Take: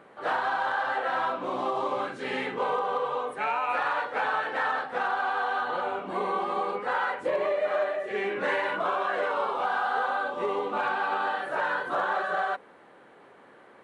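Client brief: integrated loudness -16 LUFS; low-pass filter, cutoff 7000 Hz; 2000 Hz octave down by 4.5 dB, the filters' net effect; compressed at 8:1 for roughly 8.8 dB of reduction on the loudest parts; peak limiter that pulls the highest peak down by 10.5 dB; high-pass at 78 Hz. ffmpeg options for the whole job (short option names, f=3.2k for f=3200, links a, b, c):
-af "highpass=78,lowpass=7k,equalizer=f=2k:t=o:g=-6.5,acompressor=threshold=-33dB:ratio=8,volume=26.5dB,alimiter=limit=-8dB:level=0:latency=1"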